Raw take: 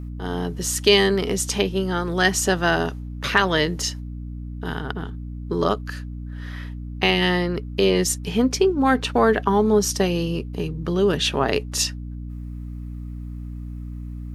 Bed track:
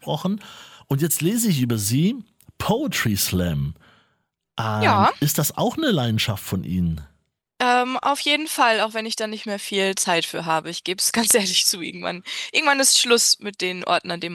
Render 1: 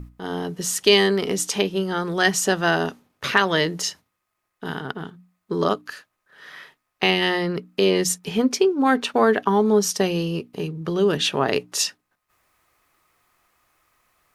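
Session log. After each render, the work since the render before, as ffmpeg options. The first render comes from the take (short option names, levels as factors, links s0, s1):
-af "bandreject=f=60:t=h:w=6,bandreject=f=120:t=h:w=6,bandreject=f=180:t=h:w=6,bandreject=f=240:t=h:w=6,bandreject=f=300:t=h:w=6"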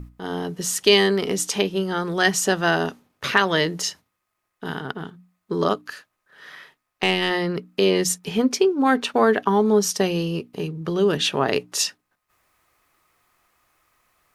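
-filter_complex "[0:a]asettb=1/sr,asplit=3[s0][s1][s2];[s0]atrim=end=6.554[s3];[s1]atrim=start=6.55:end=7.31,asetpts=PTS-STARTPTS,afade=t=in:d=0.004:c=qsin,afade=t=out:st=0.756:d=0.004:c=qsin,aeval=exprs='(tanh(2.51*val(0)+0.45)-tanh(0.45))/2.51':c=same[s4];[s2]atrim=start=7.306[s5];[s3][s4]acrossfade=d=0.004:c1=hsin:c2=qsin[s6];[s6][s5]acrossfade=d=0.004:c1=qsin:c2=hsin"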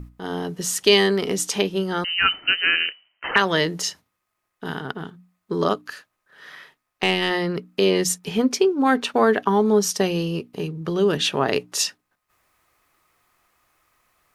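-filter_complex "[0:a]asettb=1/sr,asplit=3[s0][s1][s2];[s0]atrim=end=2.044[s3];[s1]atrim=start=2.04:end=3.36,asetpts=PTS-STARTPTS,afade=t=in:d=0.004:c=qsin,afade=t=out:st=1.316:d=0.004:c=qsin,lowpass=f=2700:t=q:w=0.5098,lowpass=f=2700:t=q:w=0.6013,lowpass=f=2700:t=q:w=0.9,lowpass=f=2700:t=q:w=2.563,afreqshift=-3200[s4];[s2]atrim=start=3.356[s5];[s3][s4]acrossfade=d=0.004:c1=hsin:c2=qsin[s6];[s6][s5]acrossfade=d=0.004:c1=qsin:c2=hsin"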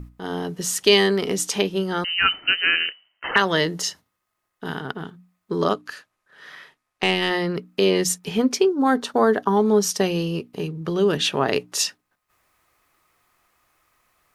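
-filter_complex "[0:a]asettb=1/sr,asplit=3[s0][s1][s2];[s0]atrim=end=2.784[s3];[s1]atrim=start=2.78:end=4.64,asetpts=PTS-STARTPTS,afade=t=in:d=0.004:c=qsin,afade=t=out:st=1.856:d=0.004:c=qsin,bandreject=f=2400:w=12[s4];[s2]atrim=start=4.636[s5];[s3][s4]acrossfade=d=0.004:c1=hsin:c2=qsin[s6];[s6][s5]acrossfade=d=0.004:c1=qsin:c2=hsin,asettb=1/sr,asplit=3[s7][s8][s9];[s7]atrim=end=5.714[s10];[s8]atrim=start=5.71:end=7.16,asetpts=PTS-STARTPTS,afade=t=in:d=0.004:c=qsin,afade=t=out:st=1.446:d=0.004:c=qsin,lowpass=12000[s11];[s9]atrim=start=7.156[s12];[s10][s11]acrossfade=d=0.004:c1=hsin:c2=qsin[s13];[s13][s12]acrossfade=d=0.004:c1=qsin:c2=hsin,asettb=1/sr,asplit=3[s14][s15][s16];[s14]atrim=end=8.694[s17];[s15]atrim=start=8.69:end=9.57,asetpts=PTS-STARTPTS,afade=t=in:d=0.004:c=qsin,afade=t=out:st=0.876:d=0.004:c=qsin,equalizer=f=2500:w=2.3:g=-13[s18];[s16]atrim=start=9.566[s19];[s17][s18]acrossfade=d=0.004:c1=hsin:c2=qsin[s20];[s20][s19]acrossfade=d=0.004:c1=qsin:c2=hsin"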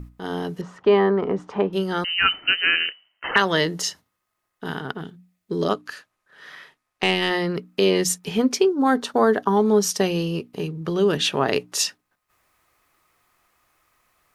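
-filter_complex "[0:a]asettb=1/sr,asplit=3[s0][s1][s2];[s0]atrim=end=0.614[s3];[s1]atrim=start=0.61:end=1.73,asetpts=PTS-STARTPTS,afade=t=in:d=0.004:c=qsin,afade=t=out:st=1.116:d=0.004:c=qsin,lowpass=f=1100:t=q:w=1.8[s4];[s2]atrim=start=1.726[s5];[s3][s4]acrossfade=d=0.004:c1=hsin:c2=qsin[s6];[s6][s5]acrossfade=d=0.004:c1=qsin:c2=hsin,asettb=1/sr,asplit=3[s7][s8][s9];[s7]atrim=end=5.014[s10];[s8]atrim=start=5.01:end=5.69,asetpts=PTS-STARTPTS,afade=t=in:d=0.004:c=qsin,afade=t=out:st=0.676:d=0.004:c=qsin,equalizer=f=1100:t=o:w=1:g=-11[s11];[s9]atrim=start=5.686[s12];[s10][s11]acrossfade=d=0.004:c1=hsin:c2=qsin[s13];[s13][s12]acrossfade=d=0.004:c1=qsin:c2=hsin"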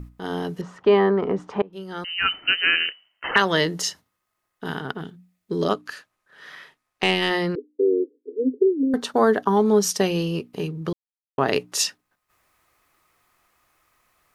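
-filter_complex "[0:a]asettb=1/sr,asplit=3[s0][s1][s2];[s0]atrim=end=7.554[s3];[s1]atrim=start=7.55:end=8.94,asetpts=PTS-STARTPTS,afade=t=in:d=0.004:c=qsin,afade=t=out:st=1.386:d=0.004:c=qsin,asuperpass=centerf=360:order=20:qfactor=1.4[s4];[s2]atrim=start=8.936[s5];[s3][s4]acrossfade=d=0.004:c1=hsin:c2=qsin[s6];[s6][s5]acrossfade=d=0.004:c1=qsin:c2=hsin,asplit=4[s7][s8][s9][s10];[s7]atrim=end=1.62,asetpts=PTS-STARTPTS,afade=t=out:st=1.616:d=0.004:c=hsin:silence=0.0707946[s11];[s8]atrim=start=1.62:end=10.93,asetpts=PTS-STARTPTS,afade=t=in:d=0.96:silence=0.0707946,afade=t=out:st=9.306:d=0.004:c=hsin[s12];[s9]atrim=start=10.93:end=11.38,asetpts=PTS-STARTPTS,volume=0[s13];[s10]atrim=start=11.38,asetpts=PTS-STARTPTS,afade=t=in:d=0.004:c=hsin[s14];[s11][s12][s13][s14]concat=n=4:v=0:a=1"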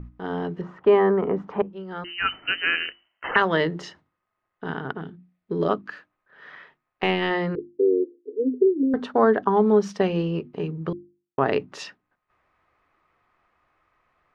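-af "lowpass=2100,bandreject=f=50:t=h:w=6,bandreject=f=100:t=h:w=6,bandreject=f=150:t=h:w=6,bandreject=f=200:t=h:w=6,bandreject=f=250:t=h:w=6,bandreject=f=300:t=h:w=6,bandreject=f=350:t=h:w=6"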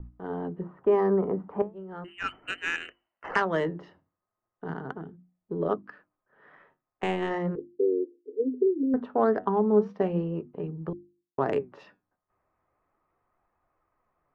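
-filter_complex "[0:a]flanger=delay=1.1:depth=9.7:regen=75:speed=0.37:shape=sinusoidal,acrossover=split=370|1100[s0][s1][s2];[s2]adynamicsmooth=sensitivity=1:basefreq=1500[s3];[s0][s1][s3]amix=inputs=3:normalize=0"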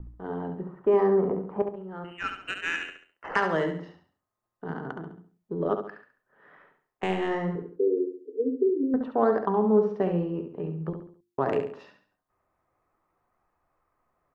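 -af "aecho=1:1:69|138|207|276:0.447|0.17|0.0645|0.0245"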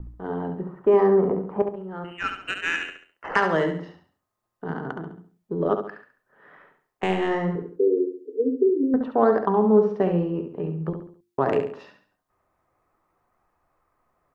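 -af "volume=1.58"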